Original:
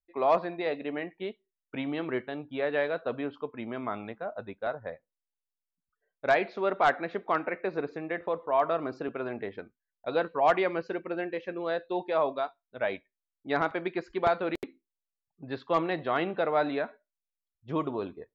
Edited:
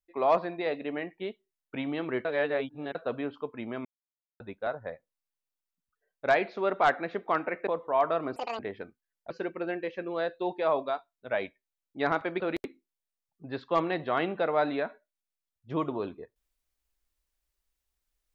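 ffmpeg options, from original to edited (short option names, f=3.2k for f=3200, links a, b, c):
-filter_complex "[0:a]asplit=10[a][b][c][d][e][f][g][h][i][j];[a]atrim=end=2.252[k];[b]atrim=start=2.248:end=2.952,asetpts=PTS-STARTPTS,areverse[l];[c]atrim=start=2.948:end=3.85,asetpts=PTS-STARTPTS,afade=t=out:st=0.898:d=0.004:c=hsin[m];[d]atrim=start=3.85:end=4.4,asetpts=PTS-STARTPTS,volume=0[n];[e]atrim=start=4.4:end=7.672,asetpts=PTS-STARTPTS,afade=t=in:d=0.004:c=hsin[o];[f]atrim=start=8.258:end=8.954[p];[g]atrim=start=8.95:end=9.37,asetpts=PTS-STARTPTS,asetrate=79821,aresample=44100,atrim=end_sample=10233,asetpts=PTS-STARTPTS[q];[h]atrim=start=9.366:end=10.082[r];[i]atrim=start=10.798:end=13.902[s];[j]atrim=start=14.388[t];[k][l]acrossfade=d=0.004:c1=hsin:c2=hsin[u];[m][n][o]concat=n=3:v=0:a=1[v];[u][v]acrossfade=d=0.004:c1=hsin:c2=hsin[w];[w][p]acrossfade=d=0.004:c1=hsin:c2=hsin[x];[x][q]acrossfade=d=0.004:c1=hsin:c2=hsin[y];[y][r]acrossfade=d=0.004:c1=hsin:c2=hsin[z];[z][s]acrossfade=d=0.004:c1=hsin:c2=hsin[aa];[aa][t]acrossfade=d=0.004:c1=hsin:c2=hsin"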